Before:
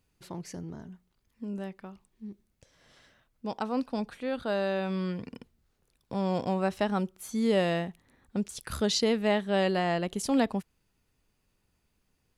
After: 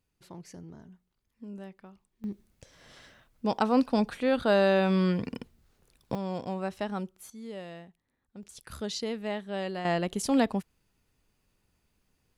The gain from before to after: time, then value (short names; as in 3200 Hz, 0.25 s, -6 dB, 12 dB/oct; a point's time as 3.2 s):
-6 dB
from 2.24 s +6.5 dB
from 6.15 s -5 dB
from 7.3 s -15.5 dB
from 8.43 s -7.5 dB
from 9.85 s +1 dB